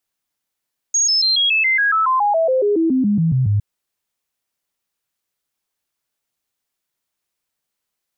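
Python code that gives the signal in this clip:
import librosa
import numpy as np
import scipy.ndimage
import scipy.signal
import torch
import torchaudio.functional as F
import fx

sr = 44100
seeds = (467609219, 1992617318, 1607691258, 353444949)

y = fx.stepped_sweep(sr, from_hz=6590.0, direction='down', per_octave=3, tones=19, dwell_s=0.14, gap_s=0.0, level_db=-13.0)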